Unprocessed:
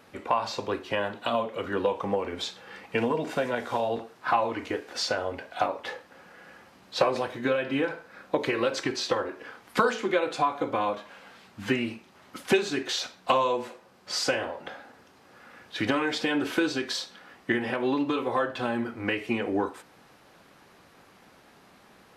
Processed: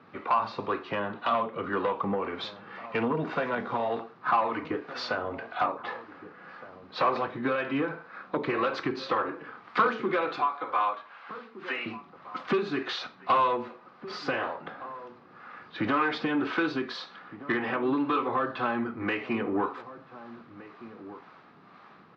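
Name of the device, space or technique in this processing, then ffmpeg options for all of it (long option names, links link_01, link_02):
guitar amplifier with harmonic tremolo: -filter_complex "[0:a]asettb=1/sr,asplit=3[link_01][link_02][link_03];[link_01]atrim=end=10.364[link_04];[link_02]atrim=start=10.36:end=11.86,asetpts=PTS-STARTPTS,afade=type=in:duration=0.004:curve=qsin,afade=type=out:start_time=1.496:duration=0.004:curve=qsin,highpass=740[link_05];[link_03]atrim=start=11.856[link_06];[link_04][link_05]acrossfade=duration=0.004:curve1=hsin:curve2=qsin[link_07];[link_07][link_06]acrossfade=duration=0.004:curve1=qsin:curve2=hsin,acrossover=split=430[link_08][link_09];[link_08]aeval=exprs='val(0)*(1-0.5/2+0.5/2*cos(2*PI*1.9*n/s))':channel_layout=same[link_10];[link_09]aeval=exprs='val(0)*(1-0.5/2-0.5/2*cos(2*PI*1.9*n/s))':channel_layout=same[link_11];[link_10][link_11]amix=inputs=2:normalize=0,asoftclip=type=tanh:threshold=-22.5dB,highpass=110,equalizer=frequency=160:width_type=q:width=4:gain=4,equalizer=frequency=550:width_type=q:width=4:gain=-4,equalizer=frequency=1200:width_type=q:width=4:gain=9,equalizer=frequency=3100:width_type=q:width=4:gain=-3,lowpass=frequency=4400:width=0.5412,lowpass=frequency=4400:width=1.3066,highshelf=frequency=5900:gain=-11.5,asplit=2[link_12][link_13];[link_13]adelay=1516,volume=-15dB,highshelf=frequency=4000:gain=-34.1[link_14];[link_12][link_14]amix=inputs=2:normalize=0,volume=3dB"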